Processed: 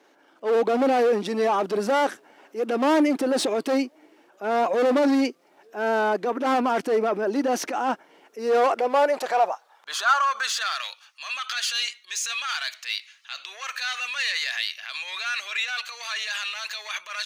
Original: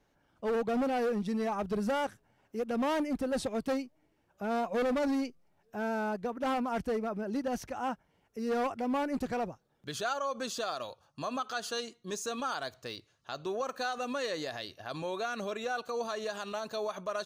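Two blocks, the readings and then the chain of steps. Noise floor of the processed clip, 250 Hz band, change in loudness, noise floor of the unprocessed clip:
-59 dBFS, +7.0 dB, +9.5 dB, -73 dBFS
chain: transient shaper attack -10 dB, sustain +4 dB; overdrive pedal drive 21 dB, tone 5.6 kHz, clips at -13.5 dBFS; high-pass sweep 310 Hz -> 2.2 kHz, 8.30–10.96 s

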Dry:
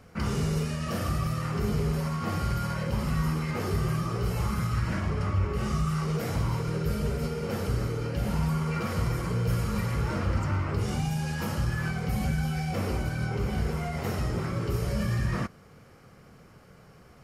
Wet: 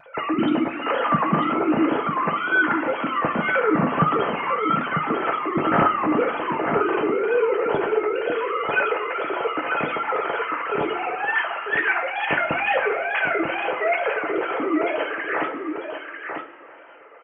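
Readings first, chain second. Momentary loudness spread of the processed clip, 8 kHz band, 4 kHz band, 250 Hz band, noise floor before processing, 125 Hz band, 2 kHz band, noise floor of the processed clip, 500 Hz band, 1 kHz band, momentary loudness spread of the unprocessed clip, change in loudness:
6 LU, under -35 dB, +5.5 dB, +6.0 dB, -53 dBFS, -9.0 dB, +15.5 dB, -44 dBFS, +12.5 dB, +14.0 dB, 2 LU, +7.0 dB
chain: formants replaced by sine waves; wow and flutter 140 cents; on a send: delay 945 ms -6.5 dB; on the sum: two-slope reverb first 0.23 s, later 2.5 s, from -18 dB, DRR 2 dB; trim +3 dB

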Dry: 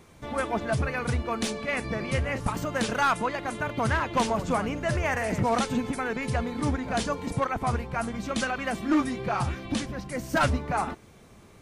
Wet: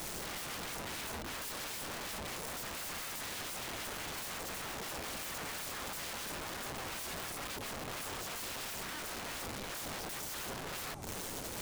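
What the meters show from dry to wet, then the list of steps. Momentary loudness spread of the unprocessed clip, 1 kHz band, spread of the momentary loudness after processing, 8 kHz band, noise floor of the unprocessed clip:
6 LU, -15.0 dB, 1 LU, -1.0 dB, -52 dBFS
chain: saturation -26.5 dBFS, distortion -10 dB; tone controls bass +13 dB, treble +10 dB; compression 6:1, threshold -47 dBFS, peak gain reduction 27.5 dB; feedback echo behind a band-pass 183 ms, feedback 68%, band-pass 460 Hz, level -13 dB; integer overflow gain 50 dB; trim +13 dB

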